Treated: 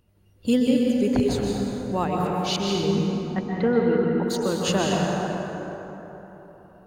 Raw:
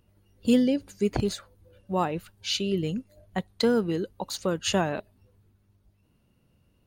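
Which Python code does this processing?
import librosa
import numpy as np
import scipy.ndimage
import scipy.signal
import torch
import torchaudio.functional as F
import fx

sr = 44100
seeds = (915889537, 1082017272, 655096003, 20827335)

y = fx.lowpass(x, sr, hz=2500.0, slope=24, at=(2.56, 4.23))
y = fx.rev_plate(y, sr, seeds[0], rt60_s=3.9, hf_ratio=0.45, predelay_ms=115, drr_db=-2.0)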